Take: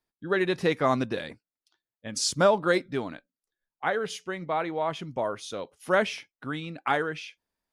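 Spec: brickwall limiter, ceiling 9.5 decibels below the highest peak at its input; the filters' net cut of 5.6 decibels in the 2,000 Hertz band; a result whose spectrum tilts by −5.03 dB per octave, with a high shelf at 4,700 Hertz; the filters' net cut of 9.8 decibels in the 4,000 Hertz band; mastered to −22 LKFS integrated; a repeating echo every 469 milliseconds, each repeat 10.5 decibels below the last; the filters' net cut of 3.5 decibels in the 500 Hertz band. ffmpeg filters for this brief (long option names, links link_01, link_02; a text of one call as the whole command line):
ffmpeg -i in.wav -af "equalizer=frequency=500:width_type=o:gain=-4,equalizer=frequency=2000:width_type=o:gain=-5,equalizer=frequency=4000:width_type=o:gain=-8,highshelf=frequency=4700:gain=-6,alimiter=limit=-23dB:level=0:latency=1,aecho=1:1:469|938|1407:0.299|0.0896|0.0269,volume=13.5dB" out.wav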